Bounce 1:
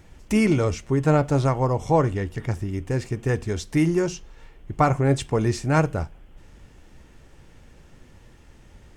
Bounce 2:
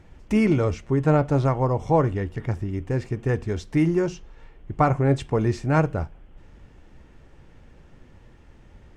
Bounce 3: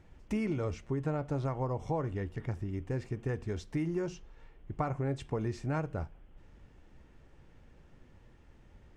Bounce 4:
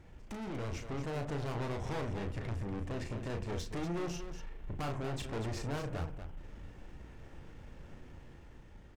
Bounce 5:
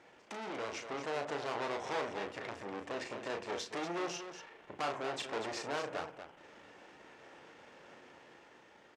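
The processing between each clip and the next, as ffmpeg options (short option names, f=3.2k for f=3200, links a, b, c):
-af "lowpass=f=2.4k:p=1"
-af "acompressor=threshold=-21dB:ratio=6,volume=-8dB"
-af "aeval=exprs='(tanh(158*val(0)+0.35)-tanh(0.35))/158':c=same,dynaudnorm=f=130:g=11:m=4dB,aecho=1:1:34.99|239.1:0.501|0.355,volume=3.5dB"
-af "highpass=470,lowpass=7k,volume=5dB"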